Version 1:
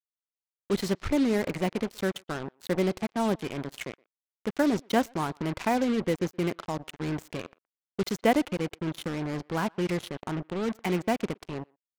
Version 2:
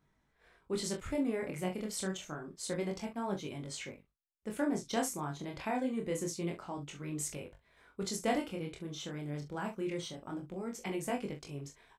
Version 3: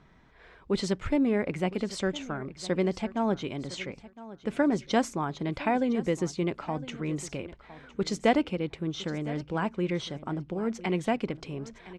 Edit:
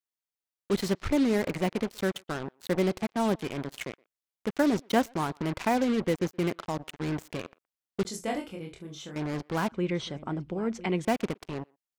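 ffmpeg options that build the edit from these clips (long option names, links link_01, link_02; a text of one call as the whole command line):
ffmpeg -i take0.wav -i take1.wav -i take2.wav -filter_complex "[0:a]asplit=3[link_01][link_02][link_03];[link_01]atrim=end=8.052[link_04];[1:a]atrim=start=8.048:end=9.162[link_05];[link_02]atrim=start=9.158:end=9.722[link_06];[2:a]atrim=start=9.718:end=11.052[link_07];[link_03]atrim=start=11.048[link_08];[link_04][link_05]acrossfade=duration=0.004:curve1=hsin:curve2=hsin[link_09];[link_09][link_06]acrossfade=duration=0.004:curve1=hsin:curve2=hsin[link_10];[link_10][link_07]acrossfade=duration=0.004:curve1=hsin:curve2=hsin[link_11];[link_11][link_08]acrossfade=duration=0.004:curve1=hsin:curve2=hsin" out.wav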